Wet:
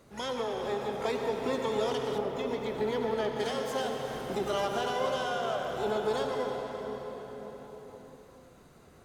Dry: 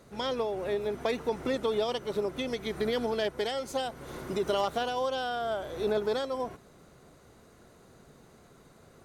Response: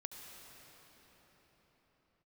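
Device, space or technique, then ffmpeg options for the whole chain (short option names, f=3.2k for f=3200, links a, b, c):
shimmer-style reverb: -filter_complex "[0:a]asplit=2[a][b];[b]asetrate=88200,aresample=44100,atempo=0.5,volume=-10dB[c];[a][c]amix=inputs=2:normalize=0[d];[1:a]atrim=start_sample=2205[e];[d][e]afir=irnorm=-1:irlink=0,asettb=1/sr,asplit=3[f][g][h];[f]atrim=end=2.184[i];[g]atrim=start=2.18:end=3.4,asetpts=PTS-STARTPTS,afade=t=in:d=0.004:c=qsin,afade=t=out:st=1.216:d=0.004:c=qsin,equalizer=f=7.7k:w=0.44:g=-8.5[j];[h]atrim=start=3.396[k];[i][j]acrossfade=d=0.004:c1=hsin:c2=qsin[l];[l][k]acrossfade=d=0.004:c1=qsin:c2=hsin,volume=2dB"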